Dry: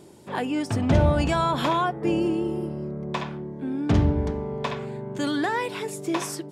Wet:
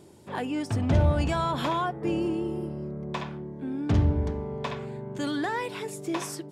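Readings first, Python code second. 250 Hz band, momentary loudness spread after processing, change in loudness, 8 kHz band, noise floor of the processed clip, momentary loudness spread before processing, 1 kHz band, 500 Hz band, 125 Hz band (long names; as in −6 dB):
−4.0 dB, 11 LU, −3.5 dB, −4.0 dB, −43 dBFS, 10 LU, −4.5 dB, −4.5 dB, −1.5 dB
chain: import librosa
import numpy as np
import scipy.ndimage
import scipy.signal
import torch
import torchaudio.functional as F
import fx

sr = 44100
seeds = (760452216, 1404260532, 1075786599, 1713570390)

p1 = fx.peak_eq(x, sr, hz=87.0, db=5.5, octaves=0.82)
p2 = np.clip(p1, -10.0 ** (-22.0 / 20.0), 10.0 ** (-22.0 / 20.0))
p3 = p1 + F.gain(torch.from_numpy(p2), -10.5).numpy()
y = F.gain(torch.from_numpy(p3), -6.0).numpy()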